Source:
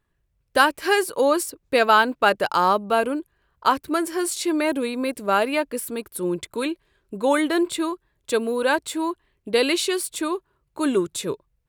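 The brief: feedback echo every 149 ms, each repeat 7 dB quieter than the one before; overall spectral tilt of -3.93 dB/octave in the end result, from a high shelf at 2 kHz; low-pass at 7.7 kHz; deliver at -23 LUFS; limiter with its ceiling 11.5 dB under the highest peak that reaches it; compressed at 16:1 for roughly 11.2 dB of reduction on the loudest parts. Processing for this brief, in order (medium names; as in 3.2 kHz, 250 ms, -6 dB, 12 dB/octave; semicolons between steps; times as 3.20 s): low-pass 7.7 kHz; treble shelf 2 kHz -6 dB; compression 16:1, threshold -24 dBFS; peak limiter -24.5 dBFS; feedback delay 149 ms, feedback 45%, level -7 dB; trim +10 dB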